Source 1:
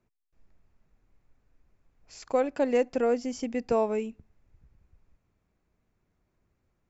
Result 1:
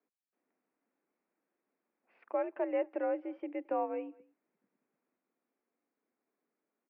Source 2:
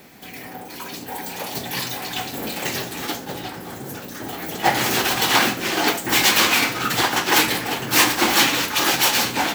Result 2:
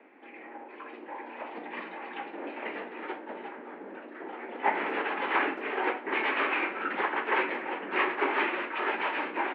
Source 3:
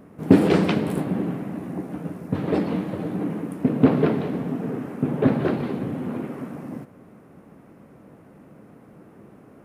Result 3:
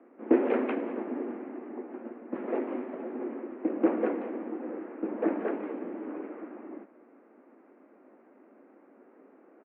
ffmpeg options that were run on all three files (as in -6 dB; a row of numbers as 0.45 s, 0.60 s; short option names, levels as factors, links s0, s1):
-filter_complex "[0:a]highpass=f=180:t=q:w=0.5412,highpass=f=180:t=q:w=1.307,lowpass=f=2400:t=q:w=0.5176,lowpass=f=2400:t=q:w=0.7071,lowpass=f=2400:t=q:w=1.932,afreqshift=64,asplit=2[s0][s1];[s1]adelay=220,highpass=300,lowpass=3400,asoftclip=type=hard:threshold=0.299,volume=0.0631[s2];[s0][s2]amix=inputs=2:normalize=0,volume=0.398"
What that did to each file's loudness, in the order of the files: -8.0 LU, -12.0 LU, -9.0 LU